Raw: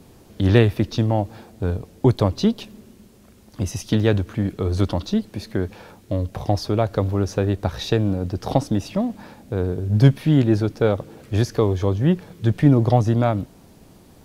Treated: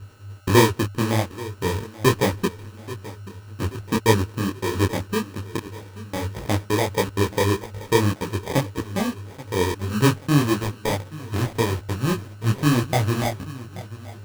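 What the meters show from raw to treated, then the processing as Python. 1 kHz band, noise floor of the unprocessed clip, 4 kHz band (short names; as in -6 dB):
+3.0 dB, -50 dBFS, +3.5 dB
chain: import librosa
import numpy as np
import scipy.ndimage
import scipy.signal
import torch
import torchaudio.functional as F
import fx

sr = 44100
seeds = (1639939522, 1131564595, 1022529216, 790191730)

p1 = fx.law_mismatch(x, sr, coded='A')
p2 = fx.filter_sweep_lowpass(p1, sr, from_hz=460.0, to_hz=5100.0, start_s=10.1, end_s=11.17, q=2.3)
p3 = fx.step_gate(p2, sr, bpm=159, pattern='xxxx.xxxx.x', floor_db=-60.0, edge_ms=4.5)
p4 = p3 + 10.0 ** (-34.0 / 20.0) * np.sin(2.0 * np.pi * 1500.0 * np.arange(len(p3)) / sr)
p5 = fx.sample_hold(p4, sr, seeds[0], rate_hz=1400.0, jitter_pct=0)
p6 = p5 + fx.echo_feedback(p5, sr, ms=832, feedback_pct=51, wet_db=-18.0, dry=0)
y = fx.detune_double(p6, sr, cents=59)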